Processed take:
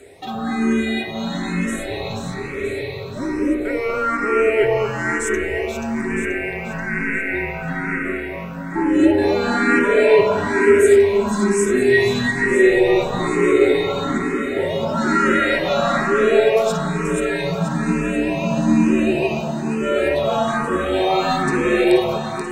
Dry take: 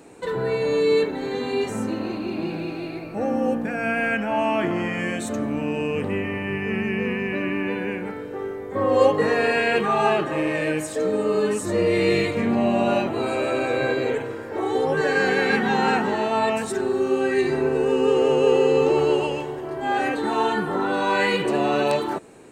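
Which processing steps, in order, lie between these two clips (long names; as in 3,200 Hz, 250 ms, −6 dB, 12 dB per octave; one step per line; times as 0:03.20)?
bass and treble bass −11 dB, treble +2 dB
frequency shifter −220 Hz
in parallel at +1 dB: brickwall limiter −16.5 dBFS, peak gain reduction 10 dB
on the sum: low-shelf EQ 160 Hz −11 dB
hollow resonant body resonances 400/1,900 Hz, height 16 dB, ringing for 95 ms
on a send: delay that swaps between a low-pass and a high-pass 241 ms, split 1,700 Hz, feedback 71%, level −2.5 dB
on the sum: frequency shifter mixed with the dry sound +1.1 Hz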